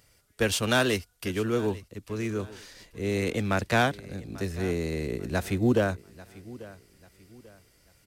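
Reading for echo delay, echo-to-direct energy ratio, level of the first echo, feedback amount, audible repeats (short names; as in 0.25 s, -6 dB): 0.841 s, -19.0 dB, -19.5 dB, 35%, 2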